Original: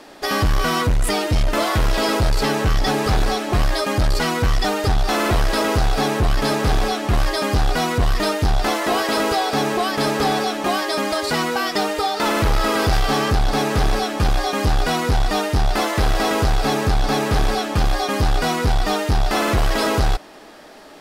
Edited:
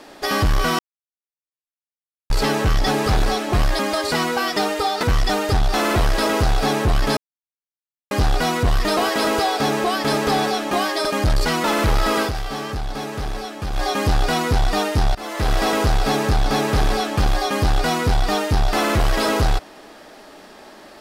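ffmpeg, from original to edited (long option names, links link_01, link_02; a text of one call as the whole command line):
ffmpeg -i in.wav -filter_complex "[0:a]asplit=13[link_01][link_02][link_03][link_04][link_05][link_06][link_07][link_08][link_09][link_10][link_11][link_12][link_13];[link_01]atrim=end=0.79,asetpts=PTS-STARTPTS,afade=type=out:start_time=0.786:duration=0.004:curve=hsin[link_14];[link_02]atrim=start=0.79:end=2.3,asetpts=PTS-STARTPTS,volume=0[link_15];[link_03]atrim=start=2.3:end=3.792,asetpts=PTS-STARTPTS,afade=type=in:duration=0.004:curve=hsin[link_16];[link_04]atrim=start=10.978:end=12.222[link_17];[link_05]atrim=start=4.378:end=6.52,asetpts=PTS-STARTPTS,afade=type=out:start_time=2.138:duration=0.004:curve=hsin[link_18];[link_06]atrim=start=6.52:end=7.46,asetpts=PTS-STARTPTS,volume=0[link_19];[link_07]atrim=start=7.46:end=8.322,asetpts=PTS-STARTPTS,afade=type=in:duration=0.004:curve=hsin[link_20];[link_08]atrim=start=8.898:end=10.982[link_21];[link_09]atrim=start=3.788:end=4.382[link_22];[link_10]atrim=start=12.218:end=12.9,asetpts=PTS-STARTPTS,afade=type=out:start_time=0.562:duration=0.12:silence=0.375837[link_23];[link_11]atrim=start=12.9:end=14.3,asetpts=PTS-STARTPTS,volume=-8.5dB[link_24];[link_12]atrim=start=14.3:end=15.73,asetpts=PTS-STARTPTS,afade=type=in:duration=0.12:silence=0.375837,afade=type=out:start_time=1.426:duration=0.004:curve=hsin:silence=0.0891251[link_25];[link_13]atrim=start=15.73,asetpts=PTS-STARTPTS,afade=type=in:duration=0.4:silence=0.0891251[link_26];[link_14][link_15][link_16]concat=n=3:v=0:a=1[link_27];[link_27][link_17]acrossfade=duration=0.004:curve1=hsin:curve2=hsin[link_28];[link_18][link_19][link_20]concat=n=3:v=0:a=1[link_29];[link_28][link_29]acrossfade=duration=0.004:curve1=hsin:curve2=hsin[link_30];[link_30][link_21]acrossfade=duration=0.004:curve1=hsin:curve2=hsin[link_31];[link_31][link_22]acrossfade=duration=0.004:curve1=hsin:curve2=hsin[link_32];[link_23][link_24][link_25][link_26]concat=n=4:v=0:a=1[link_33];[link_32][link_33]acrossfade=duration=0.004:curve1=hsin:curve2=hsin" out.wav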